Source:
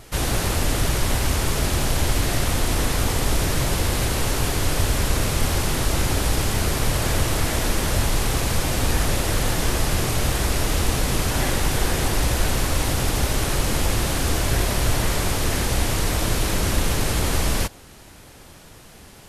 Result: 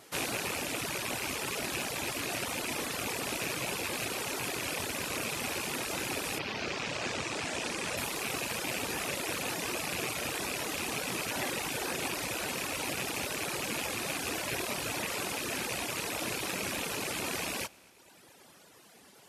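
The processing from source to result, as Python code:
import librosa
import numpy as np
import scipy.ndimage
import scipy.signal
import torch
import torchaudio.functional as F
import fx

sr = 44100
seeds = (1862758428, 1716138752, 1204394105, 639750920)

y = fx.rattle_buzz(x, sr, strikes_db=-27.0, level_db=-15.0)
y = fx.lowpass(y, sr, hz=fx.line((6.38, 5300.0), (7.96, 10000.0)), slope=24, at=(6.38, 7.96), fade=0.02)
y = fx.echo_heads(y, sr, ms=112, heads='first and second', feedback_pct=64, wet_db=-19.5)
y = fx.dereverb_blind(y, sr, rt60_s=1.2)
y = scipy.signal.sosfilt(scipy.signal.butter(2, 230.0, 'highpass', fs=sr, output='sos'), y)
y = F.gain(torch.from_numpy(y), -7.0).numpy()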